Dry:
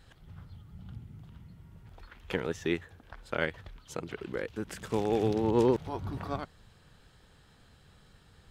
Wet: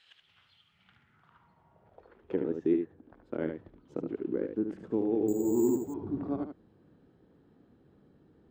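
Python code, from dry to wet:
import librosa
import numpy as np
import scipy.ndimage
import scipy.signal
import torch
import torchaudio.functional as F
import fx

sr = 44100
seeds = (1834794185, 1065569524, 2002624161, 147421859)

y = x + 10.0 ** (-6.5 / 20.0) * np.pad(x, (int(74 * sr / 1000.0), 0))[:len(x)]
y = fx.rider(y, sr, range_db=3, speed_s=0.5)
y = fx.filter_sweep_bandpass(y, sr, from_hz=2900.0, to_hz=300.0, start_s=0.66, end_s=2.43, q=2.8)
y = fx.spec_repair(y, sr, seeds[0], start_s=5.42, length_s=0.66, low_hz=370.0, high_hz=810.0, source='both')
y = fx.resample_bad(y, sr, factor=6, down='none', up='hold', at=(5.28, 5.94))
y = F.gain(torch.from_numpy(y), 6.5).numpy()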